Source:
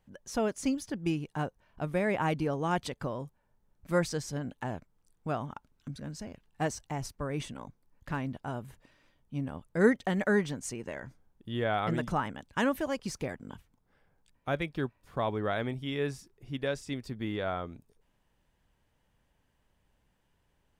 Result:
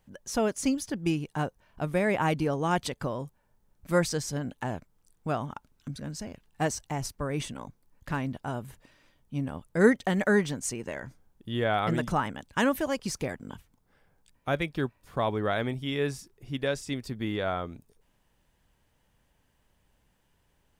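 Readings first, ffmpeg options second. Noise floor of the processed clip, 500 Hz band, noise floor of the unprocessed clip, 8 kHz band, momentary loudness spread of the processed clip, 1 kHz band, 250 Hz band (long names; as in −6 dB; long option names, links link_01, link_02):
−71 dBFS, +3.0 dB, −74 dBFS, +6.5 dB, 15 LU, +3.0 dB, +3.0 dB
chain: -af "highshelf=frequency=5100:gain=5,volume=3dB"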